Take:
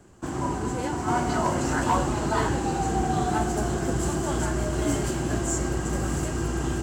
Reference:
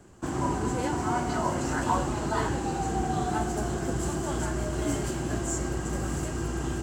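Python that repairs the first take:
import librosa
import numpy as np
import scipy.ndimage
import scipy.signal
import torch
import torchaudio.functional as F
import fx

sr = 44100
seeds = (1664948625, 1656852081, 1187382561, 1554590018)

y = fx.fix_declip(x, sr, threshold_db=-15.5)
y = fx.fix_level(y, sr, at_s=1.08, step_db=-3.5)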